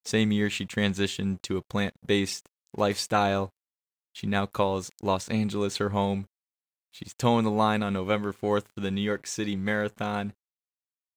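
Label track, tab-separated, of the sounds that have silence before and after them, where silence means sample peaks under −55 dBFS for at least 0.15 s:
2.670000	3.500000	sound
4.150000	6.260000	sound
6.930000	10.330000	sound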